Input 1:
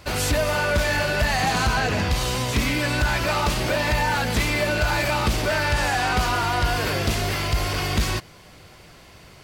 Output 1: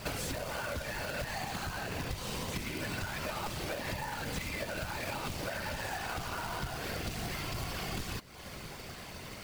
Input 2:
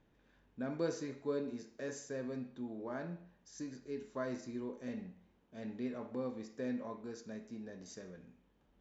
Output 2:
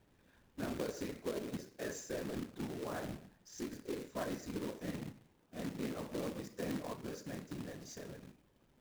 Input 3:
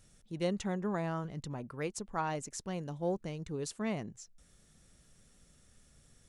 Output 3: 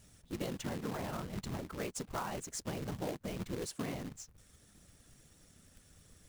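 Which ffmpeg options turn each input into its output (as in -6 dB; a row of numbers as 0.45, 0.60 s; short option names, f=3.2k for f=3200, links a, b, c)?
-af "afftfilt=real='hypot(re,im)*cos(2*PI*random(0))':imag='hypot(re,im)*sin(2*PI*random(1))':win_size=512:overlap=0.75,acrusher=bits=2:mode=log:mix=0:aa=0.000001,acompressor=threshold=-42dB:ratio=10,volume=7.5dB"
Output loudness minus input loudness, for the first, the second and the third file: -15.5, -0.5, -3.0 LU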